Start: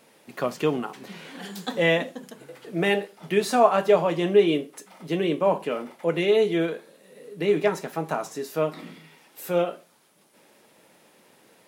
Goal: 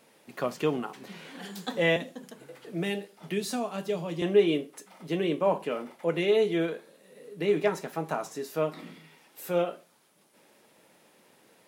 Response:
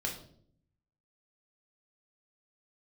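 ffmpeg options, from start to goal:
-filter_complex "[0:a]asettb=1/sr,asplit=3[link_01][link_02][link_03];[link_01]atrim=end=1.964[link_04];[link_02]atrim=start=1.96:end=4.22,asetpts=PTS-STARTPTS,afade=type=in:duration=0.004:curve=qsin,afade=type=out:start_time=2.256:duration=0.004:curve=qsin,acrossover=split=320|3000[link_05][link_06][link_07];[link_06]acompressor=threshold=-36dB:ratio=3[link_08];[link_05][link_08][link_07]amix=inputs=3:normalize=0[link_09];[link_03]atrim=start=4.216[link_10];[link_04][link_09]acrossfade=duration=0.004:curve1=hsin:curve2=qsin[link_11];[link_11][link_10]acrossfade=duration=0.004:curve1=qsin:curve2=hsin,volume=-3.5dB"

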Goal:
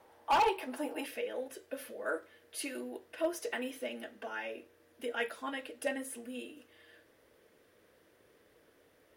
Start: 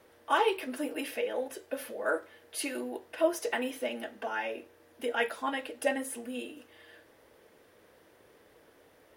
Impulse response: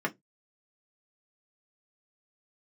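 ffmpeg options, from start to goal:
-af "asetnsamples=nb_out_samples=441:pad=0,asendcmd='1.06 equalizer g -5',equalizer=frequency=850:width=2.3:gain=12,asoftclip=type=hard:threshold=-19dB,volume=-4.5dB"

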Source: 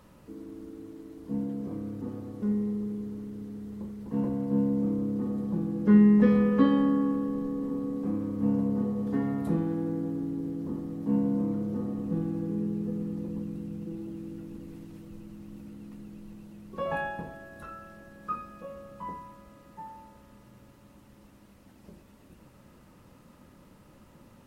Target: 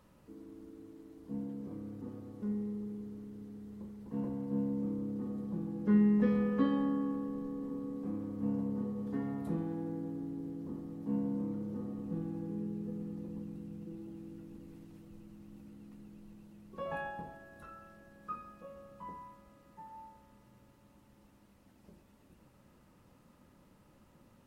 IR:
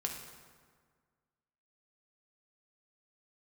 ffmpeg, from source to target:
-filter_complex "[0:a]asplit=2[link_01][link_02];[link_02]highpass=frequency=760:width_type=q:width=7.7[link_03];[1:a]atrim=start_sample=2205,asetrate=83790,aresample=44100,adelay=136[link_04];[link_03][link_04]afir=irnorm=-1:irlink=0,volume=-16dB[link_05];[link_01][link_05]amix=inputs=2:normalize=0,volume=-8dB"

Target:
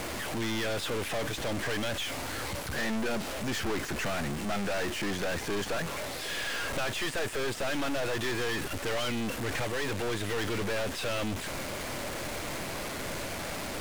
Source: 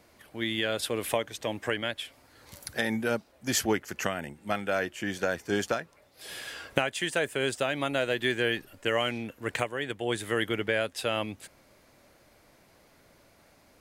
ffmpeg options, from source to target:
ffmpeg -i in.wav -filter_complex "[0:a]aeval=exprs='val(0)+0.5*0.0316*sgn(val(0))':channel_layout=same,lowpass=10000,acrossover=split=3700[link_01][link_02];[link_02]acompressor=threshold=-42dB:ratio=4:attack=1:release=60[link_03];[link_01][link_03]amix=inputs=2:normalize=0,aeval=exprs='(tanh(39.8*val(0)+0.5)-tanh(0.5))/39.8':channel_layout=same,asplit=2[link_04][link_05];[link_05]acrusher=bits=5:mix=0:aa=0.000001,volume=-6dB[link_06];[link_04][link_06]amix=inputs=2:normalize=0" out.wav

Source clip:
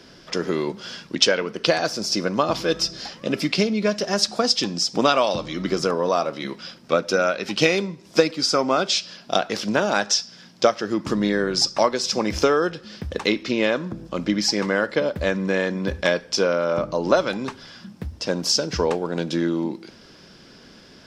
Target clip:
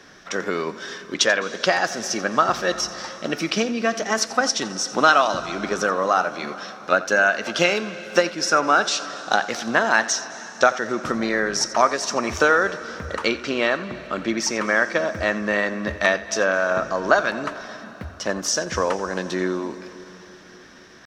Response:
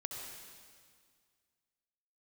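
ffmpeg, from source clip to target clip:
-filter_complex "[0:a]equalizer=frequency=1300:width=1:gain=10.5,asetrate=48091,aresample=44100,atempo=0.917004,asplit=2[link_01][link_02];[1:a]atrim=start_sample=2205,asetrate=23373,aresample=44100,adelay=87[link_03];[link_02][link_03]afir=irnorm=-1:irlink=0,volume=-16.5dB[link_04];[link_01][link_04]amix=inputs=2:normalize=0,volume=-3.5dB"

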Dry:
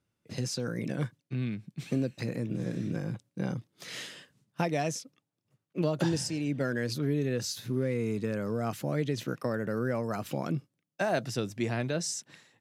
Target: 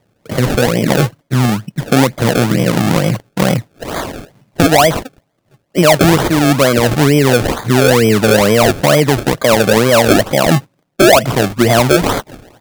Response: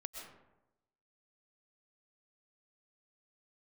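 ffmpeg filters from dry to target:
-af "highpass=45,equalizer=frequency=640:width_type=o:width=0.68:gain=11,acrusher=samples=31:mix=1:aa=0.000001:lfo=1:lforange=31:lforate=2.2,alimiter=level_in=20.5dB:limit=-1dB:release=50:level=0:latency=1,volume=-1dB"

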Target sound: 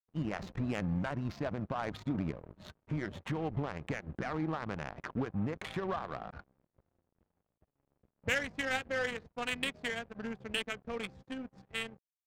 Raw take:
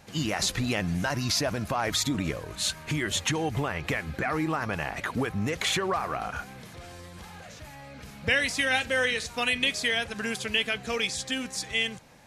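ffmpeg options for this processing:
ffmpeg -i in.wav -af "adynamicequalizer=threshold=0.00794:dfrequency=190:dqfactor=1.5:tfrequency=190:tqfactor=1.5:attack=5:release=100:ratio=0.375:range=2:mode=boostabove:tftype=bell,aeval=exprs='sgn(val(0))*max(abs(val(0))-0.0119,0)':channel_layout=same,adynamicsmooth=sensitivity=1.5:basefreq=630,volume=-5.5dB" out.wav

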